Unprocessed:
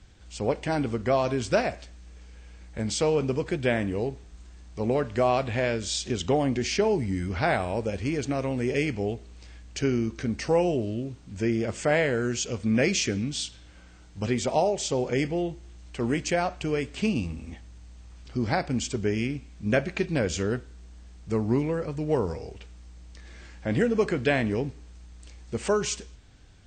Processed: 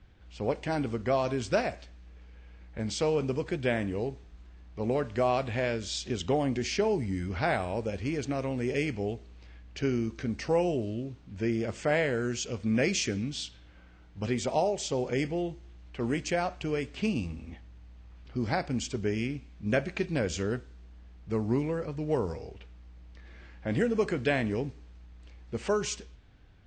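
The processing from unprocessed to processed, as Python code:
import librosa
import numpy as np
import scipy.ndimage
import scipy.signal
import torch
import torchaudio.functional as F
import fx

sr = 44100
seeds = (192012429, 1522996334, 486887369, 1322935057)

y = fx.env_lowpass(x, sr, base_hz=2800.0, full_db=-20.0)
y = y * librosa.db_to_amplitude(-3.5)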